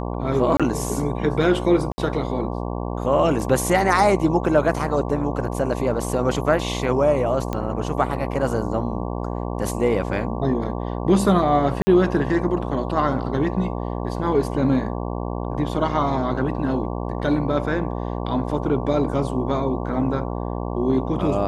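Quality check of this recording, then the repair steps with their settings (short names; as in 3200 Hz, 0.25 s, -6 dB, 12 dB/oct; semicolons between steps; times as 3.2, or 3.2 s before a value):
buzz 60 Hz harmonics 19 -27 dBFS
0.57–0.6 gap 26 ms
1.92–1.98 gap 60 ms
7.53 pop -13 dBFS
11.82–11.87 gap 50 ms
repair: de-click; de-hum 60 Hz, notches 19; interpolate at 0.57, 26 ms; interpolate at 1.92, 60 ms; interpolate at 11.82, 50 ms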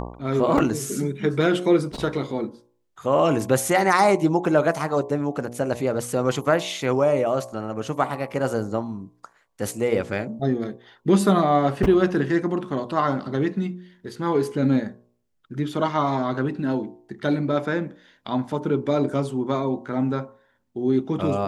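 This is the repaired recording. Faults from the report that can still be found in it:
none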